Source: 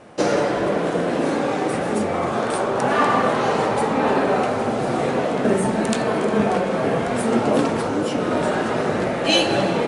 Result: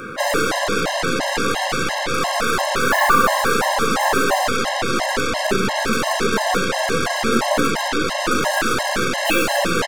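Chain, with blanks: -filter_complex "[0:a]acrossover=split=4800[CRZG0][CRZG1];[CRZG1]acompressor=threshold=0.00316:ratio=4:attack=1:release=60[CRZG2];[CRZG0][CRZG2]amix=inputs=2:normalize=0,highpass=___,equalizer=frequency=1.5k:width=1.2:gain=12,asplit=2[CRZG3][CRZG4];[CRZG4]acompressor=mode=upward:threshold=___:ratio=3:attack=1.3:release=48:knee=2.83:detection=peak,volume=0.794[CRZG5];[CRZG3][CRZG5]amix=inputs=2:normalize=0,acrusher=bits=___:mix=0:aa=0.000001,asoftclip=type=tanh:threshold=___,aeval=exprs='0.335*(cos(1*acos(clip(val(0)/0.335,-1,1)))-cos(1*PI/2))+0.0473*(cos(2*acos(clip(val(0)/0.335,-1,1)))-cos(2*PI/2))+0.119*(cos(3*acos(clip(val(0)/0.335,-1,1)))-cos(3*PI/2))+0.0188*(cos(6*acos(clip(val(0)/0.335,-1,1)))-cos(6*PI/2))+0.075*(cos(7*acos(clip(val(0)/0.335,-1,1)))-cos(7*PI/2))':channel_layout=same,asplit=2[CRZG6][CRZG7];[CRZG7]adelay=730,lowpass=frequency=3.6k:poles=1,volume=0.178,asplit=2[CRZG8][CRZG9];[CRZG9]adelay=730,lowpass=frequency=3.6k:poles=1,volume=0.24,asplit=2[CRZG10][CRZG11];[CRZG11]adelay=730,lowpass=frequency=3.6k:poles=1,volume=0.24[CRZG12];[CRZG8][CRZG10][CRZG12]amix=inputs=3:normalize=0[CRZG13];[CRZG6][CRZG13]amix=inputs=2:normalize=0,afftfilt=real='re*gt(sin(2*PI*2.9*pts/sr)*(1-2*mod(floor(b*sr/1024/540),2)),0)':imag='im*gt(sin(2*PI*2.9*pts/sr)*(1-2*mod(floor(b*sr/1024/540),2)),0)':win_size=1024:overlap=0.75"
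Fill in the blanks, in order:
100, 0.0562, 9, 0.335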